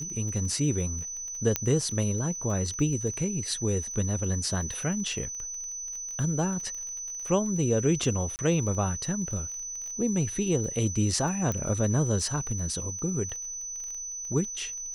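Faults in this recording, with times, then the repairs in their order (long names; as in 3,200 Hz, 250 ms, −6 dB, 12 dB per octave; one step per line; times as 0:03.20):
surface crackle 21 per second −35 dBFS
whistle 6,000 Hz −34 dBFS
0:01.56: click −8 dBFS
0:08.36–0:08.39: drop-out 29 ms
0:11.52: click −17 dBFS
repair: click removal
notch filter 6,000 Hz, Q 30
repair the gap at 0:08.36, 29 ms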